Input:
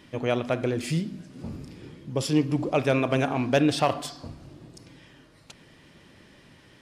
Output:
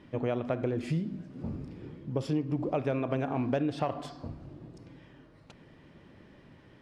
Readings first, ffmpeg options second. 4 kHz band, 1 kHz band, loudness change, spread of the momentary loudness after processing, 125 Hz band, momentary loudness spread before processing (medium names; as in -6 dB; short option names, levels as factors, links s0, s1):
-14.5 dB, -7.5 dB, -7.0 dB, 16 LU, -4.5 dB, 18 LU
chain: -af "lowpass=f=1100:p=1,acompressor=threshold=0.0501:ratio=6"